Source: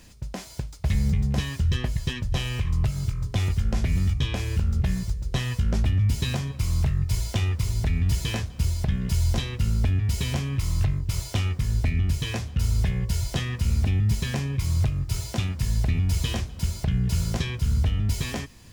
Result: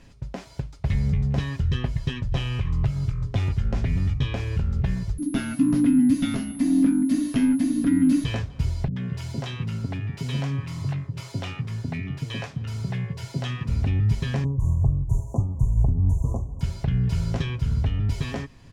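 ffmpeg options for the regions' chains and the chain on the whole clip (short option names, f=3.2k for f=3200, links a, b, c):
-filter_complex "[0:a]asettb=1/sr,asplit=3[a][b][c];[a]atrim=end=5.184[d];[b]atrim=start=5.18:end=8.24,asetpts=PTS-STARTPTS,afade=t=in:d=0.004:c=qsin,afade=t=out:st=3.056:d=0.004:c=qsin,asplit=2[e][f];[f]adelay=12,volume=-12dB[g];[e][g]amix=inputs=2:normalize=0,atrim=end_sample=134946,aeval=exprs='val(0)+0.0562*sin(2*PI*11000*n/s)':c=same,afreqshift=-350[h];[c]atrim=start=8.236[i];[d][h]acrossfade=d=0.004:c1=hsin:c2=qsin[j];[j][i]acrossfade=d=0.004:c1=qsin:c2=hsin,asettb=1/sr,asplit=3[k][l][m];[k]atrim=end=8.884[n];[l]atrim=start=8.88:end=13.69,asetpts=PTS-STARTPTS,afade=t=in:d=0.004:c=qsin,afade=t=out:st=4.806:d=0.004:c=qsin,highpass=f=120:w=0.5412,highpass=f=120:w=1.3066,acrossover=split=460[o][p];[p]adelay=80[q];[o][q]amix=inputs=2:normalize=0,atrim=end_sample=212121[r];[m]atrim=start=13.686[s];[n][r]acrossfade=d=0.004:c1=hsin:c2=qsin[t];[t][s]acrossfade=d=0.004:c1=qsin:c2=hsin,asettb=1/sr,asplit=3[u][v][w];[u]atrim=end=14.444[x];[v]atrim=start=14.44:end=16.61,asetpts=PTS-STARTPTS,afade=t=in:d=0.004:c=qsin,afade=t=out:st=2.166:d=0.004:c=qsin,asuperstop=centerf=2700:order=20:qfactor=0.52,lowshelf=f=62:g=12,tremolo=f=4.3:d=0.4[y];[w]atrim=start=16.606[z];[x][y]acrossfade=d=0.004:c1=hsin:c2=qsin[aa];[aa][z]acrossfade=d=0.004:c1=qsin:c2=hsin,aemphasis=mode=reproduction:type=75fm,aecho=1:1:7.3:0.33"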